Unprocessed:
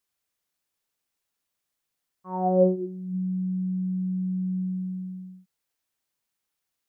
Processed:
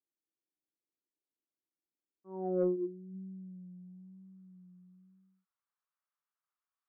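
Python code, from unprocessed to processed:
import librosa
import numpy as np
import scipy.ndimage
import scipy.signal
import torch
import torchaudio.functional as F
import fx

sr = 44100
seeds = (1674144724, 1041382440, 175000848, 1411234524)

y = fx.filter_sweep_bandpass(x, sr, from_hz=320.0, to_hz=1200.0, start_s=3.0, end_s=4.4, q=3.9)
y = 10.0 ** (-19.0 / 20.0) * np.tanh(y / 10.0 ** (-19.0 / 20.0))
y = fx.vibrato(y, sr, rate_hz=1.0, depth_cents=43.0)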